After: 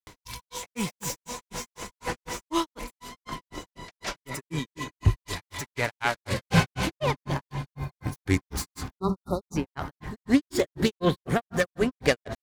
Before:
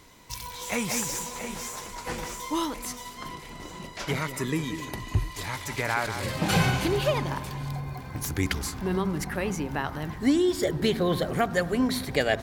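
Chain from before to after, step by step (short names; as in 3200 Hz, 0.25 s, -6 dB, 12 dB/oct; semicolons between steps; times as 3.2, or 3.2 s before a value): self-modulated delay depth 0.1 ms; grains 0.165 s, grains 4/s, pitch spread up and down by 0 st; upward compressor, threshold -47 dBFS; spectral delete 8.93–9.56, 1400–3600 Hz; gain +5 dB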